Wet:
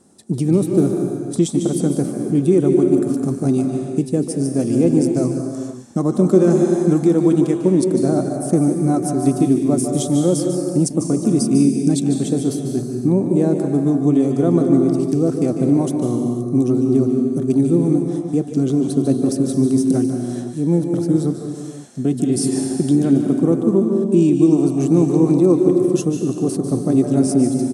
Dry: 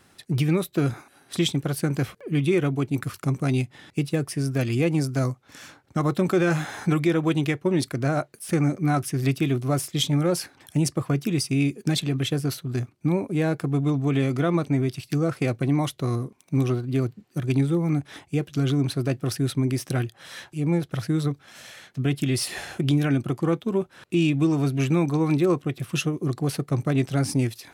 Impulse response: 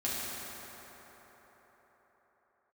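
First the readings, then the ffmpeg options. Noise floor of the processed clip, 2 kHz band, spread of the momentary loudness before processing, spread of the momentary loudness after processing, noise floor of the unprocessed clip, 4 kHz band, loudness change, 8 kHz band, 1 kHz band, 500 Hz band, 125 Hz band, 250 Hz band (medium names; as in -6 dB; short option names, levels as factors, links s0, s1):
-29 dBFS, no reading, 7 LU, 7 LU, -59 dBFS, -4.5 dB, +7.5 dB, +6.5 dB, +2.0 dB, +9.5 dB, +2.5 dB, +10.0 dB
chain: -filter_complex "[0:a]firequalizer=gain_entry='entry(130,0);entry(190,13);entry(1500,-7);entry(2300,-11);entry(6200,6);entry(9000,12);entry(13000,-10)':delay=0.05:min_phase=1,asplit=2[s0][s1];[1:a]atrim=start_sample=2205,afade=t=out:st=0.43:d=0.01,atrim=end_sample=19404,adelay=146[s2];[s1][s2]afir=irnorm=-1:irlink=0,volume=0.376[s3];[s0][s3]amix=inputs=2:normalize=0,volume=0.708"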